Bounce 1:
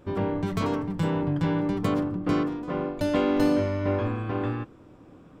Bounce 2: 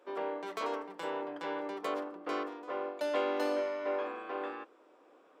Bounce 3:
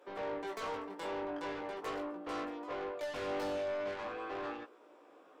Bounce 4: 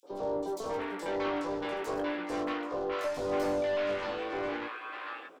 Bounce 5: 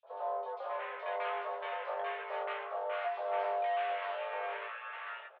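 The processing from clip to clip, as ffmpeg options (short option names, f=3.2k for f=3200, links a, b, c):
-af "highpass=f=420:w=0.5412,highpass=f=420:w=1.3066,highshelf=f=5k:g=-5.5,volume=-4dB"
-af "asoftclip=type=tanh:threshold=-38dB,flanger=delay=16.5:depth=4.1:speed=0.42,volume=5dB"
-filter_complex "[0:a]acrossover=split=1000|4300[a][b][c];[a]adelay=30[d];[b]adelay=630[e];[d][e][c]amix=inputs=3:normalize=0,volume=7.5dB"
-filter_complex "[0:a]asplit=2[a][b];[b]adelay=14,volume=-12dB[c];[a][c]amix=inputs=2:normalize=0,highpass=f=410:t=q:w=0.5412,highpass=f=410:t=q:w=1.307,lowpass=f=3.1k:t=q:w=0.5176,lowpass=f=3.1k:t=q:w=0.7071,lowpass=f=3.1k:t=q:w=1.932,afreqshift=110,volume=-2.5dB"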